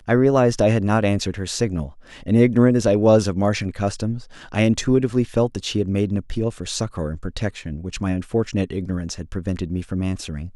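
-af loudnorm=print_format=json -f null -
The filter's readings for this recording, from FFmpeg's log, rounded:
"input_i" : "-21.9",
"input_tp" : "-3.0",
"input_lra" : "7.2",
"input_thresh" : "-32.0",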